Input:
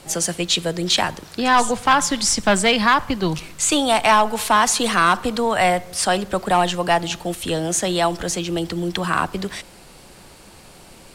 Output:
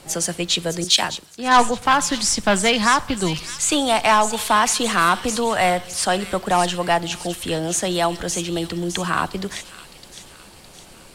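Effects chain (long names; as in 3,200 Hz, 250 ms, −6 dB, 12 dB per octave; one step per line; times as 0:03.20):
delay with a high-pass on its return 611 ms, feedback 49%, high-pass 3,200 Hz, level −7 dB
0:00.84–0:01.82: multiband upward and downward expander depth 100%
level −1 dB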